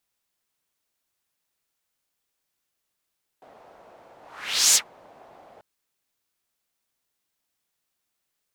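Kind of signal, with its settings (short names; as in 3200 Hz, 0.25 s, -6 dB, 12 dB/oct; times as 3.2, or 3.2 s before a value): whoosh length 2.19 s, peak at 1.33, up 0.57 s, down 0.10 s, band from 690 Hz, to 7000 Hz, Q 2.3, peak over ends 35 dB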